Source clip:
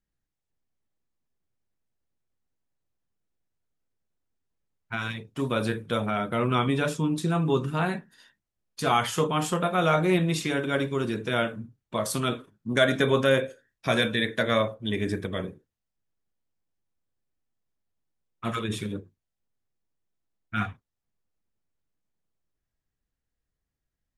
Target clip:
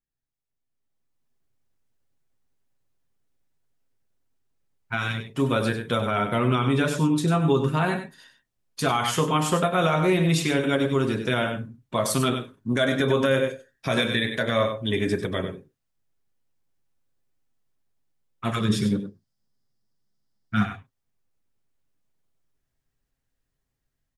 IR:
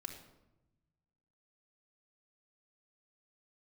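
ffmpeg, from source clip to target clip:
-filter_complex "[0:a]aecho=1:1:7.5:0.31,asplit=2[s0][s1];[s1]aecho=0:1:97:0.335[s2];[s0][s2]amix=inputs=2:normalize=0,alimiter=limit=0.168:level=0:latency=1:release=133,asettb=1/sr,asplit=3[s3][s4][s5];[s3]atrim=end=18.604[s6];[s4]atrim=start=18.6:end=20.65,asetpts=PTS-STARTPTS,afade=t=in:d=0.004:c=qsin,afade=t=out:st=2.046:d=0.004:c=qsin,equalizer=f=125:t=o:w=0.33:g=6,equalizer=f=200:t=o:w=0.33:g=12,equalizer=f=2500:t=o:w=0.33:g=-6,equalizer=f=5000:t=o:w=0.33:g=12[s7];[s5]atrim=start=20.646[s8];[s6][s7]acrossfade=d=0.004:c1=hsin:c2=qsin[s9];[s9][s8]acrossfade=d=0.004:c1=qsin:c2=hsin,dynaudnorm=f=650:g=3:m=4.22,volume=0.398"

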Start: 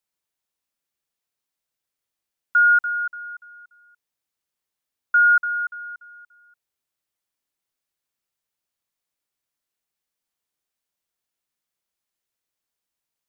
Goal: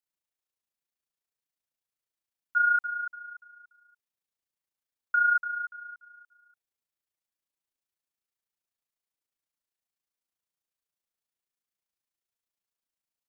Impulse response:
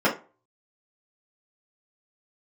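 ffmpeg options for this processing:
-af "tremolo=f=28:d=0.571,volume=0.531"

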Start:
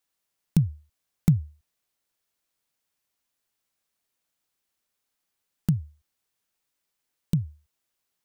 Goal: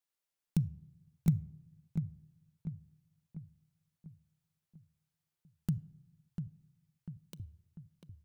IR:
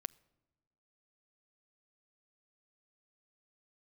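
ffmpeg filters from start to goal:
-filter_complex "[0:a]asettb=1/sr,asplit=3[s0][s1][s2];[s0]atrim=end=5.784[s3];[s1]atrim=start=5.78:end=7.4,asetpts=PTS-STARTPTS,afade=t=in:d=0.004:c=qsin,afade=t=out:st=1.616:d=0.004:c=qsin,highpass=510[s4];[s2]atrim=start=7.396[s5];[s3][s4]acrossfade=d=0.004:c1=hsin:c2=qsin[s6];[s6][s5]acrossfade=d=0.004:c1=qsin:c2=hsin,asplit=2[s7][s8];[s8]adelay=695,lowpass=f=2000:p=1,volume=0.447,asplit=2[s9][s10];[s10]adelay=695,lowpass=f=2000:p=1,volume=0.5,asplit=2[s11][s12];[s12]adelay=695,lowpass=f=2000:p=1,volume=0.5,asplit=2[s13][s14];[s14]adelay=695,lowpass=f=2000:p=1,volume=0.5,asplit=2[s15][s16];[s16]adelay=695,lowpass=f=2000:p=1,volume=0.5,asplit=2[s17][s18];[s18]adelay=695,lowpass=f=2000:p=1,volume=0.5[s19];[s7][s9][s11][s13][s15][s17][s19]amix=inputs=7:normalize=0[s20];[1:a]atrim=start_sample=2205,asetrate=52920,aresample=44100[s21];[s20][s21]afir=irnorm=-1:irlink=0,volume=0.531"

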